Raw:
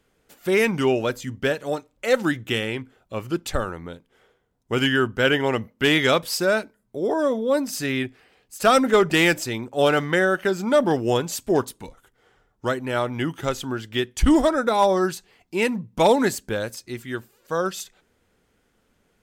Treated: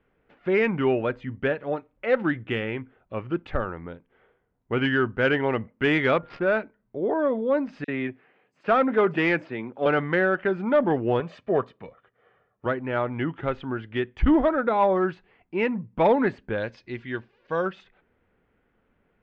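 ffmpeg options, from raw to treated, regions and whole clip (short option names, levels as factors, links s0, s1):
-filter_complex "[0:a]asettb=1/sr,asplit=3[s0][s1][s2];[s0]atrim=end=6.164[s3];[s1]atrim=start=6.16:end=6.57,asetpts=PTS-STARTPTS,afade=t=in:d=0.004:c=qsin,afade=t=out:st=0.406:d=0.004:c=qsin,adynamicsmooth=sensitivity=4:basefreq=800,aeval=exprs='val(0)+0.00355*sin(2*PI*1400*n/s)':c=same[s4];[s2]atrim=start=6.566[s5];[s3][s4]acrossfade=d=0.004:c1=hsin:c2=qsin[s6];[s6][s5]acrossfade=d=0.004:c1=qsin:c2=hsin,asettb=1/sr,asplit=3[s7][s8][s9];[s7]atrim=end=7.844[s10];[s8]atrim=start=7.84:end=9.86,asetpts=PTS-STARTPTS,afade=t=in:d=0.004:c=qsin,afade=t=out:st=2.016:d=0.004:c=qsin,aeval=exprs='if(lt(val(0),0),0.708*val(0),val(0))':c=same,highpass=f=130:w=0.5412,highpass=f=130:w=1.3066,acrossover=split=5200[s11][s12];[s11]adelay=40[s13];[s13][s12]amix=inputs=2:normalize=0,atrim=end_sample=89082[s14];[s9]atrim=start=9.856[s15];[s10][s14]acrossfade=d=0.004:c1=hsin:c2=qsin[s16];[s16][s15]acrossfade=d=0.004:c1=qsin:c2=hsin,asettb=1/sr,asplit=3[s17][s18][s19];[s17]atrim=end=11.204[s20];[s18]atrim=start=11.2:end=12.66,asetpts=PTS-STARTPTS,afade=t=in:d=0.004:c=qsin,afade=t=out:st=1.456:d=0.004:c=qsin,highpass=140,aecho=1:1:1.7:0.53,atrim=end_sample=64386[s21];[s19]atrim=start=12.656[s22];[s20][s21]acrossfade=d=0.004:c1=hsin:c2=qsin[s23];[s23][s22]acrossfade=d=0.004:c1=qsin:c2=hsin,asettb=1/sr,asplit=3[s24][s25][s26];[s24]atrim=end=16.574[s27];[s25]atrim=start=16.57:end=17.66,asetpts=PTS-STARTPTS,afade=t=in:d=0.004:c=qsin,afade=t=out:st=1.086:d=0.004:c=qsin,lowpass=f=5400:t=q:w=1.6,highshelf=f=4100:g=11.5,bandreject=f=1300:w=8.6[s28];[s26]atrim=start=17.656[s29];[s27][s28]acrossfade=d=0.004:c1=hsin:c2=qsin[s30];[s30][s29]acrossfade=d=0.004:c1=qsin:c2=hsin,lowpass=f=2500:w=0.5412,lowpass=f=2500:w=1.3066,acontrast=32,volume=0.447"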